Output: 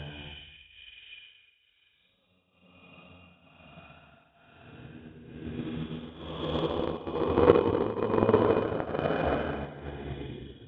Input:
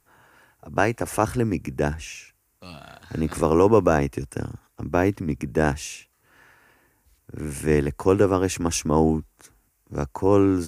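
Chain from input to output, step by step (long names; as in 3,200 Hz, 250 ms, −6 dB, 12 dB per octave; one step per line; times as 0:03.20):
hearing-aid frequency compression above 2,400 Hz 4 to 1
extreme stretch with random phases 4.7×, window 0.50 s, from 0:01.99
flutter between parallel walls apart 9.5 metres, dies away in 0.23 s
harmonic generator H 3 −14 dB, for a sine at −4.5 dBFS
shaped tremolo triangle 1.1 Hz, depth 75%
transient designer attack +4 dB, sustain −3 dB
de-essing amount 75%
level −1 dB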